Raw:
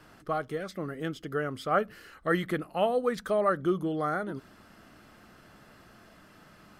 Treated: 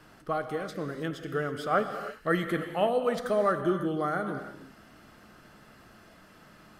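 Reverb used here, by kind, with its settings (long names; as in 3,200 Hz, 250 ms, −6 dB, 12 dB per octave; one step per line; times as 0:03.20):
reverb whose tail is shaped and stops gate 350 ms flat, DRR 7 dB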